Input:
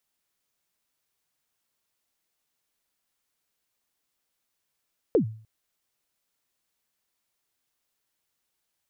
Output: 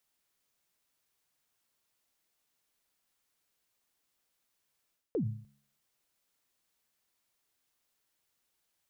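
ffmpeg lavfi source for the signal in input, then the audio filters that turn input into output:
-f lavfi -i "aevalsrc='0.2*pow(10,-3*t/0.46)*sin(2*PI*(520*0.101/log(110/520)*(exp(log(110/520)*min(t,0.101)/0.101)-1)+110*max(t-0.101,0)))':d=0.3:s=44100"
-af "bandreject=f=70.22:t=h:w=4,bandreject=f=140.44:t=h:w=4,bandreject=f=210.66:t=h:w=4,areverse,acompressor=threshold=-31dB:ratio=10,areverse"

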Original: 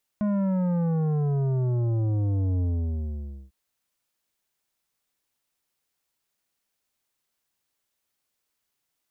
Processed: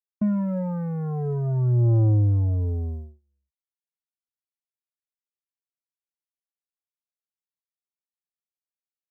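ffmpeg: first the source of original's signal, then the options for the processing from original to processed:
-f lavfi -i "aevalsrc='0.0708*clip((3.3-t)/0.9,0,1)*tanh(3.35*sin(2*PI*210*3.3/log(65/210)*(exp(log(65/210)*t/3.3)-1)))/tanh(3.35)':d=3.3:s=44100"
-filter_complex "[0:a]acrossover=split=460|3000[a][b][c];[b]acompressor=threshold=-38dB:ratio=6[d];[a][d][c]amix=inputs=3:normalize=0,agate=range=-37dB:threshold=-30dB:ratio=16:detection=peak,aphaser=in_gain=1:out_gain=1:delay=2.9:decay=0.53:speed=0.5:type=sinusoidal"

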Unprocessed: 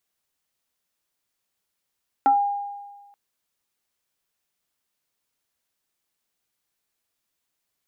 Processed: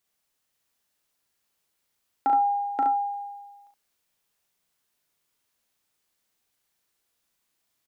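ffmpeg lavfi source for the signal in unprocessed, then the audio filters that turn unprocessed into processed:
-f lavfi -i "aevalsrc='0.237*pow(10,-3*t/1.37)*sin(2*PI*810*t+0.51*pow(10,-3*t/0.23)*sin(2*PI*0.66*810*t))':d=0.88:s=44100"
-filter_complex "[0:a]asplit=2[a][b];[b]aecho=0:1:529:0.562[c];[a][c]amix=inputs=2:normalize=0,alimiter=limit=-17.5dB:level=0:latency=1:release=482,asplit=2[d][e];[e]aecho=0:1:38|70:0.531|0.562[f];[d][f]amix=inputs=2:normalize=0"

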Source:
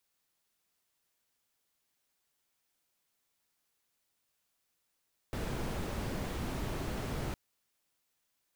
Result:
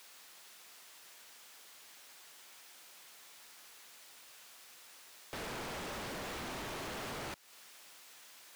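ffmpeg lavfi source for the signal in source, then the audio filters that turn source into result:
-f lavfi -i "anoisesrc=c=brown:a=0.0741:d=2.01:r=44100:seed=1"
-filter_complex "[0:a]acompressor=threshold=-47dB:ratio=4,asplit=2[a][b];[b]highpass=f=720:p=1,volume=34dB,asoftclip=type=tanh:threshold=-35.5dB[c];[a][c]amix=inputs=2:normalize=0,lowpass=f=5.9k:p=1,volume=-6dB"

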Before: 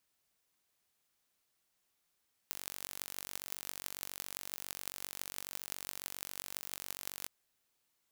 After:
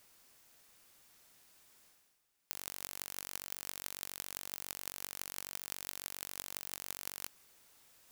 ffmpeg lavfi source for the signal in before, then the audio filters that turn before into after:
-f lavfi -i "aevalsrc='0.299*eq(mod(n,932),0)*(0.5+0.5*eq(mod(n,7456),0))':d=4.77:s=44100"
-af "bandreject=f=3.6k:w=9.3,areverse,acompressor=mode=upward:threshold=-50dB:ratio=2.5,areverse,aeval=exprs='val(0)*sgn(sin(2*PI*410*n/s))':c=same"

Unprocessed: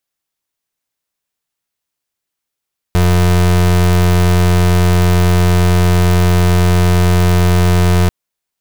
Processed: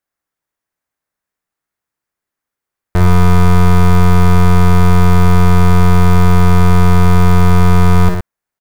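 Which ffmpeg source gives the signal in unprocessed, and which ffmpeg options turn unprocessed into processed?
-f lavfi -i "aevalsrc='0.316*(2*lt(mod(88.9*t,1),0.32)-1)':d=5.14:s=44100"
-filter_complex "[0:a]highshelf=f=2.3k:t=q:w=1.5:g=-7,aeval=exprs='0.447*(cos(1*acos(clip(val(0)/0.447,-1,1)))-cos(1*PI/2))+0.0447*(cos(4*acos(clip(val(0)/0.447,-1,1)))-cos(4*PI/2))':c=same,asplit=2[a][b];[b]aecho=0:1:55.39|116.6:0.447|0.447[c];[a][c]amix=inputs=2:normalize=0"

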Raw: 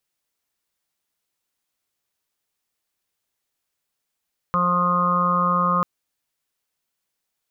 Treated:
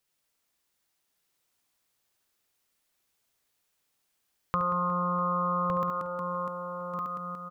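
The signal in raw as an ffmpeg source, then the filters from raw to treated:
-f lavfi -i "aevalsrc='0.0631*sin(2*PI*177*t)+0.00631*sin(2*PI*354*t)+0.0376*sin(2*PI*531*t)+0.00841*sin(2*PI*708*t)+0.00891*sin(2*PI*885*t)+0.0794*sin(2*PI*1062*t)+0.1*sin(2*PI*1239*t)+0.01*sin(2*PI*1416*t)':d=1.29:s=44100"
-filter_complex "[0:a]asplit=2[a][b];[b]aecho=0:1:70|182|361.2|647.9|1107:0.631|0.398|0.251|0.158|0.1[c];[a][c]amix=inputs=2:normalize=0,acompressor=threshold=-29dB:ratio=2.5,asplit=2[d][e];[e]aecho=0:1:1160:0.562[f];[d][f]amix=inputs=2:normalize=0"

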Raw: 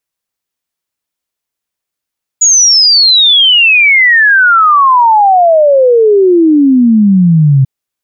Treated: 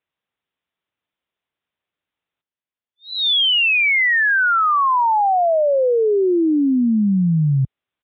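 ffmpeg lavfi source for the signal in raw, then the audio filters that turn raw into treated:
-f lavfi -i "aevalsrc='0.708*clip(min(t,5.24-t)/0.01,0,1)*sin(2*PI*6900*5.24/log(130/6900)*(exp(log(130/6900)*t/5.24)-1))':d=5.24:s=44100"
-af "highpass=51,alimiter=limit=-13dB:level=0:latency=1:release=17,aresample=8000,aresample=44100"

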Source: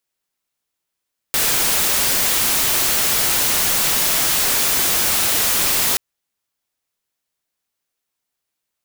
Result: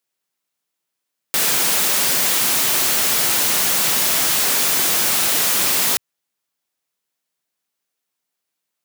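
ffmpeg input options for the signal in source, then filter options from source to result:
-f lavfi -i "anoisesrc=c=white:a=0.231:d=4.63:r=44100:seed=1"
-af "highpass=f=120:w=0.5412,highpass=f=120:w=1.3066"

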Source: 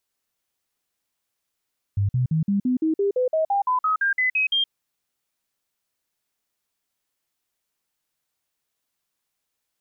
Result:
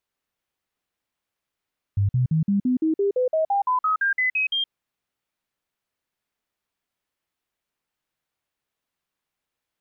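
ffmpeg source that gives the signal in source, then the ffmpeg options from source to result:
-f lavfi -i "aevalsrc='0.126*clip(min(mod(t,0.17),0.12-mod(t,0.17))/0.005,0,1)*sin(2*PI*100*pow(2,floor(t/0.17)/3)*mod(t,0.17))':d=2.72:s=44100"
-af "bass=f=250:g=1,treble=f=4k:g=-9"

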